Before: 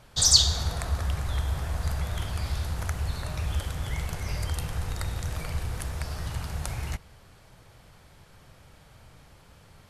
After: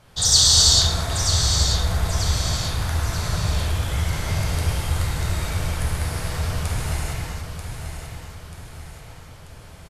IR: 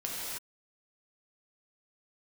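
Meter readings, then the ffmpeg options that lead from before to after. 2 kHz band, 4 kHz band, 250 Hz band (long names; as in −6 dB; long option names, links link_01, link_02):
+8.0 dB, +8.0 dB, +8.0 dB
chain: -filter_complex "[0:a]aecho=1:1:937|1874|2811|3748|4685:0.398|0.179|0.0806|0.0363|0.0163[link_01];[1:a]atrim=start_sample=2205,asetrate=30429,aresample=44100[link_02];[link_01][link_02]afir=irnorm=-1:irlink=0"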